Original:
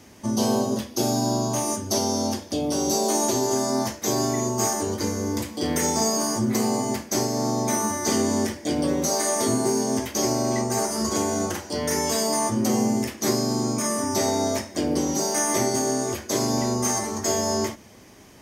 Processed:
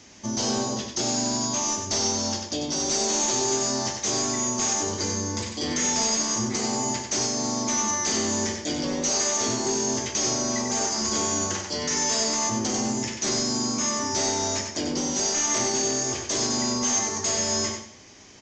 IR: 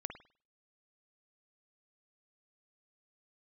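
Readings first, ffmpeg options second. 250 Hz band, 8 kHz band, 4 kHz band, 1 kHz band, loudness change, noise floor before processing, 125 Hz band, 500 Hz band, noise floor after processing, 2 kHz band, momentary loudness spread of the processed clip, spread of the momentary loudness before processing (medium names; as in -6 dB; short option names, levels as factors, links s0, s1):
-5.0 dB, +3.5 dB, +3.5 dB, -3.0 dB, -0.5 dB, -45 dBFS, -5.0 dB, -5.5 dB, -39 dBFS, +1.0 dB, 5 LU, 4 LU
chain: -af "highshelf=f=2100:g=10.5,aresample=16000,asoftclip=type=hard:threshold=0.133,aresample=44100,aecho=1:1:94|188|282|376:0.501|0.14|0.0393|0.011,volume=0.596"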